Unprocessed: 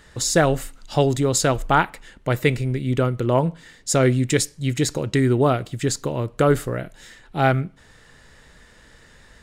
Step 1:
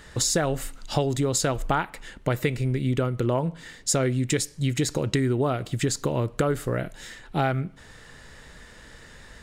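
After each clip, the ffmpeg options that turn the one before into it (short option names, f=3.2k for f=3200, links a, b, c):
-af "acompressor=threshold=-24dB:ratio=6,volume=3dB"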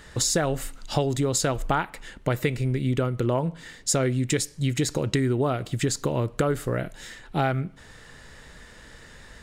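-af anull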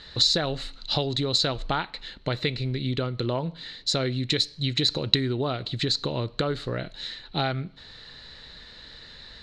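-af "lowpass=f=4.1k:t=q:w=13,volume=-3.5dB"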